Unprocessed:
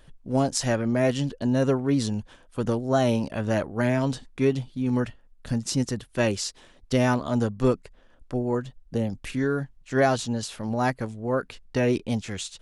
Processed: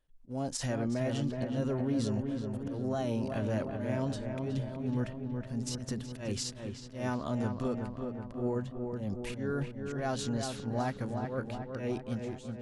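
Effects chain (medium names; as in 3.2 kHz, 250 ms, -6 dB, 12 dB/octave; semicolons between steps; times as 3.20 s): fade out at the end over 1.22 s; gate with hold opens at -45 dBFS; harmonic-percussive split percussive -5 dB; peak limiter -22.5 dBFS, peak gain reduction 11 dB; slow attack 145 ms; on a send: filtered feedback delay 371 ms, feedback 66%, low-pass 2.2 kHz, level -5 dB; on the sum: trim -2 dB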